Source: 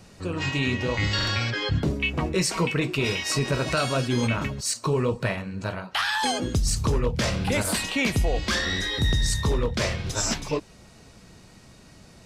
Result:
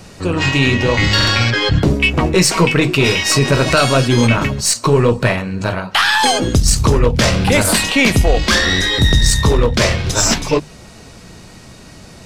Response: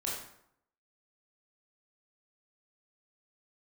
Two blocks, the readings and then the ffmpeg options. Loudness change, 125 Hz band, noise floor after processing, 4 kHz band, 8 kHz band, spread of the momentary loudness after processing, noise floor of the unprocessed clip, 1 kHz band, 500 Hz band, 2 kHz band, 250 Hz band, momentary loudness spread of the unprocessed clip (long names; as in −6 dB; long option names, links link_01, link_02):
+11.5 dB, +11.0 dB, −39 dBFS, +12.0 dB, +12.0 dB, 4 LU, −51 dBFS, +12.0 dB, +12.0 dB, +12.0 dB, +11.5 dB, 4 LU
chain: -af "acontrast=85,aeval=exprs='0.398*(cos(1*acos(clip(val(0)/0.398,-1,1)))-cos(1*PI/2))+0.0224*(cos(4*acos(clip(val(0)/0.398,-1,1)))-cos(4*PI/2))':channel_layout=same,bandreject=frequency=50:width_type=h:width=6,bandreject=frequency=100:width_type=h:width=6,bandreject=frequency=150:width_type=h:width=6,bandreject=frequency=200:width_type=h:width=6,bandreject=frequency=250:width_type=h:width=6,volume=5dB"